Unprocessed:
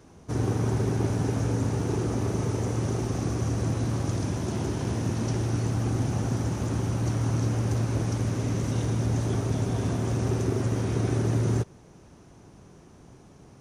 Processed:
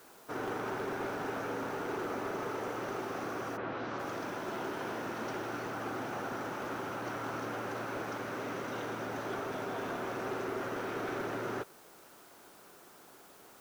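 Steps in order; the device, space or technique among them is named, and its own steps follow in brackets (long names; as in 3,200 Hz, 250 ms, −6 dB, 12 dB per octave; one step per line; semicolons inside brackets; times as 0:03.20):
drive-through speaker (band-pass filter 480–2,900 Hz; parametric band 1,400 Hz +7 dB 0.39 octaves; hard clipping −31.5 dBFS, distortion −16 dB; white noise bed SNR 22 dB)
0:03.56–0:03.98: low-pass filter 2,900 Hz → 6,900 Hz 24 dB per octave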